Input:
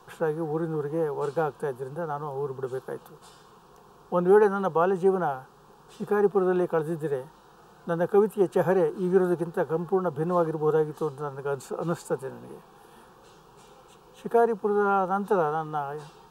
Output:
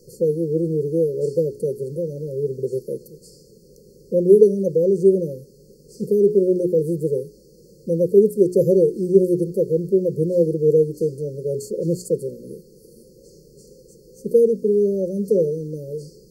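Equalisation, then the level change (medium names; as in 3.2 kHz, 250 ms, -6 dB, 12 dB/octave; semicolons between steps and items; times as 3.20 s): brick-wall FIR band-stop 590–4200 Hz; hum notches 60/120/180/240/300/360/420 Hz; +8.0 dB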